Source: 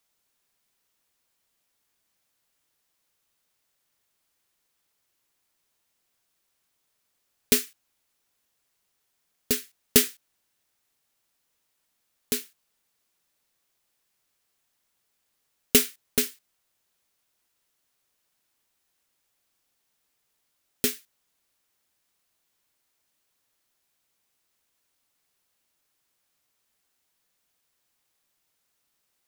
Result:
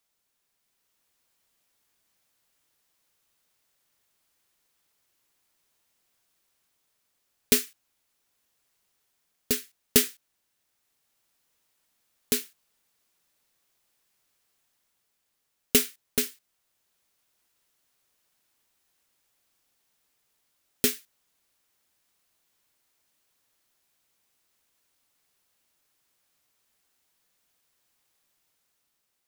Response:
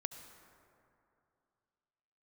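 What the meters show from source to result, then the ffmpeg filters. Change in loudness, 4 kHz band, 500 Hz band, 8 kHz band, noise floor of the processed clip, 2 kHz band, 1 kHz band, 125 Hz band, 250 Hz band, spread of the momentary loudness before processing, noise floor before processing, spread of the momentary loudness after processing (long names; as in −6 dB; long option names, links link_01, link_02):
−1.0 dB, −1.0 dB, −1.0 dB, −1.0 dB, −77 dBFS, −1.0 dB, −1.0 dB, −1.0 dB, −1.0 dB, 10 LU, −76 dBFS, 9 LU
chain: -af "dynaudnorm=framelen=190:gausssize=9:maxgain=4.5dB,volume=-2.5dB"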